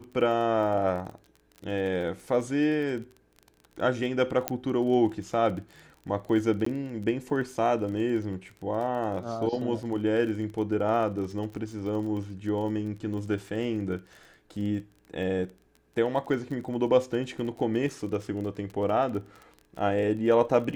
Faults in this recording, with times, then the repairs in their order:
crackle 25/s -36 dBFS
4.48 pop -9 dBFS
6.65–6.66 gap 14 ms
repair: de-click; interpolate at 6.65, 14 ms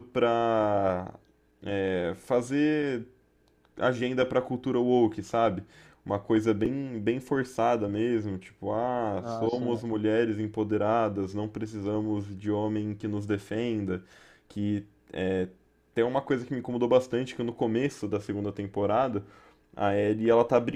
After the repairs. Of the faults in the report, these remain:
none

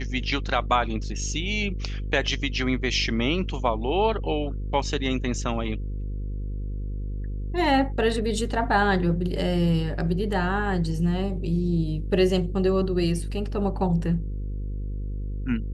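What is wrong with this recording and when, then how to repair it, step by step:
buzz 50 Hz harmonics 10 -30 dBFS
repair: de-hum 50 Hz, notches 10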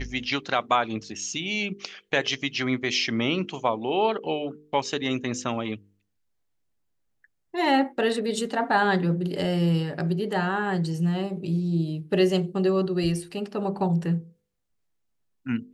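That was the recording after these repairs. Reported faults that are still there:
none

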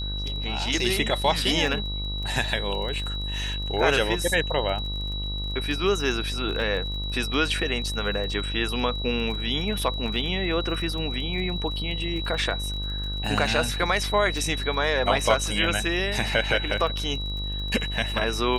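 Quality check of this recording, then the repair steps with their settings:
buzz 50 Hz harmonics 26 -31 dBFS
crackle 26/s -33 dBFS
tone 3900 Hz -32 dBFS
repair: de-click; notch 3900 Hz, Q 30; de-hum 50 Hz, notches 26

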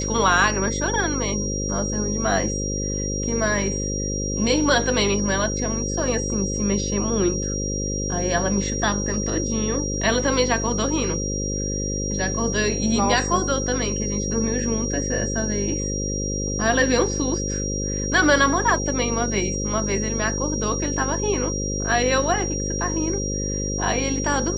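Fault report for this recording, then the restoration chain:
buzz 50 Hz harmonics 11 -27 dBFS
tone 5700 Hz -28 dBFS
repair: notch 5700 Hz, Q 30; de-hum 50 Hz, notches 11

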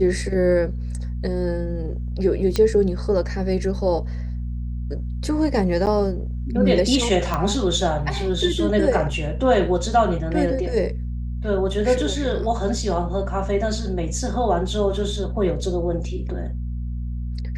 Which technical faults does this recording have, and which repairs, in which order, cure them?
hum 60 Hz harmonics 4 -27 dBFS
2.56 pop -8 dBFS
5.86–5.87 gap 8.7 ms
7.34 pop -10 dBFS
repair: de-click; de-hum 60 Hz, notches 4; interpolate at 5.86, 8.7 ms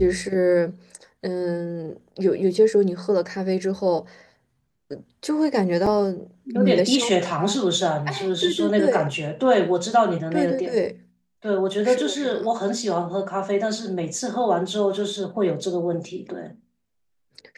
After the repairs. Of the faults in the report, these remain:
none

